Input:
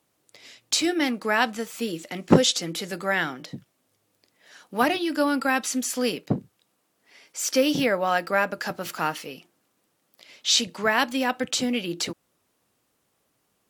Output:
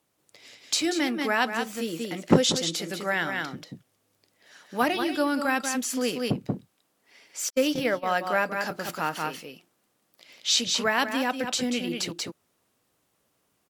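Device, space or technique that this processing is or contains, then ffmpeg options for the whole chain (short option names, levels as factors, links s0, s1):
ducked delay: -filter_complex "[0:a]asplit=3[s0][s1][s2];[s1]adelay=186,volume=0.794[s3];[s2]apad=whole_len=611989[s4];[s3][s4]sidechaincompress=threshold=0.0282:ratio=6:attack=32:release=168[s5];[s0][s5]amix=inputs=2:normalize=0,asettb=1/sr,asplit=3[s6][s7][s8];[s6]atrim=end=7.504[s9];[s7]atrim=start=7.5:end=8.06,asetpts=PTS-STARTPTS,afade=t=in:d=0.004:c=qsin,afade=t=out:st=0.556:d=0.004:c=qsin,agate=range=0.00224:threshold=0.0794:ratio=16:detection=peak[s10];[s8]atrim=start=8.056[s11];[s9][s10]acrossfade=d=0.004:c1=hsin:c2=qsin[s12];[s12][s11]acrossfade=d=0.004:c1=qsin:c2=hsin,volume=0.75"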